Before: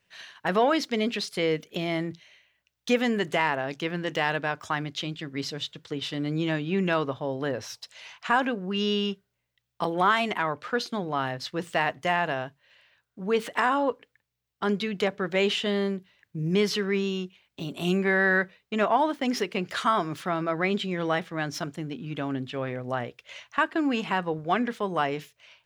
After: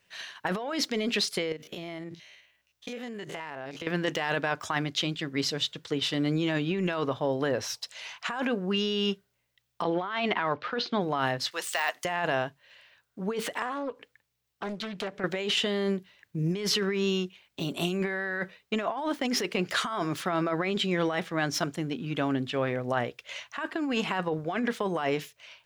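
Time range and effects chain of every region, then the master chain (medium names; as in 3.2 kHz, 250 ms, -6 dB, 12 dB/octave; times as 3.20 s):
1.52–3.87 s: spectrogram pixelated in time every 50 ms + compression 12:1, threshold -37 dBFS
9.82–11.01 s: block-companded coder 7-bit + low-pass 4.4 kHz 24 dB/octave
11.51–12.05 s: de-esser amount 95% + high-pass 800 Hz + treble shelf 3.7 kHz +10.5 dB
13.62–15.24 s: compression 2.5:1, threshold -39 dBFS + loudspeaker Doppler distortion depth 0.57 ms
whole clip: tone controls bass -3 dB, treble +2 dB; compressor with a negative ratio -29 dBFS, ratio -1; trim +1 dB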